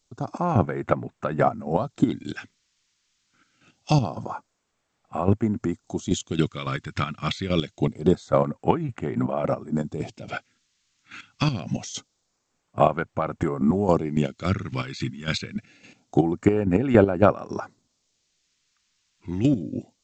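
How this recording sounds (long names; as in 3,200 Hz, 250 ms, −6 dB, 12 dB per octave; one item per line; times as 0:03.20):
chopped level 3.6 Hz, depth 65%, duty 35%
a quantiser's noise floor 12 bits, dither triangular
phaser sweep stages 2, 0.25 Hz, lowest notch 600–4,600 Hz
G.722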